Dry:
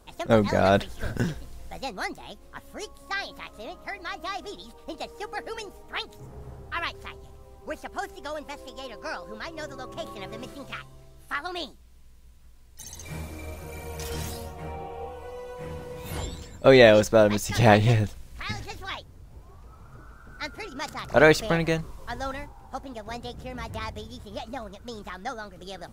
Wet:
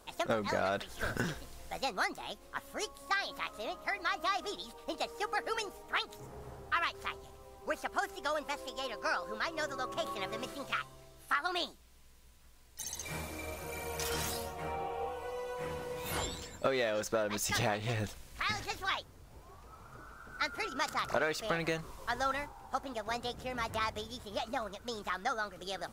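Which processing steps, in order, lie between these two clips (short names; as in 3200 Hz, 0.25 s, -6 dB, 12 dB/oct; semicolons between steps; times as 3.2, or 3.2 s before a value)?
in parallel at -4 dB: overloaded stage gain 21.5 dB; on the sum: low shelf 270 Hz -11 dB; compressor 16:1, threshold -26 dBFS, peak gain reduction 16 dB; dynamic EQ 1300 Hz, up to +5 dB, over -48 dBFS, Q 3.2; gain -3 dB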